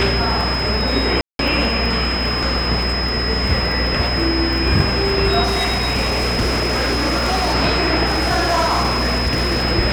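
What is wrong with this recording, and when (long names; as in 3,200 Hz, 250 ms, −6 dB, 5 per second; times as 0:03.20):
mains buzz 60 Hz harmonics 36 −23 dBFS
surface crackle 16 per second
whistle 5,100 Hz −22 dBFS
0:01.21–0:01.39: drop-out 182 ms
0:05.43–0:07.55: clipping −14 dBFS
0:08.05–0:09.64: clipping −13 dBFS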